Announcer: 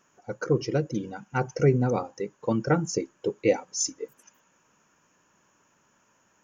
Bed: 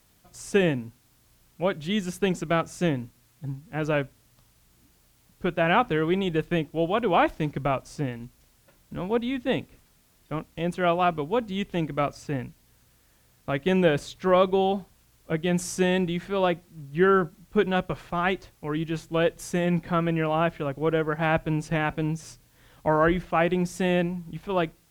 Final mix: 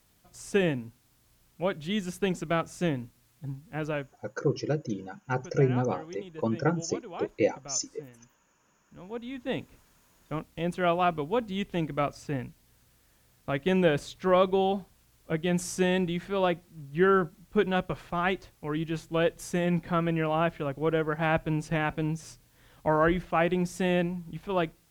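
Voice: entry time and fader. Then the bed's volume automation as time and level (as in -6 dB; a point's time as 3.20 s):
3.95 s, -3.0 dB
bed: 3.76 s -3.5 dB
4.57 s -19 dB
8.78 s -19 dB
9.72 s -2.5 dB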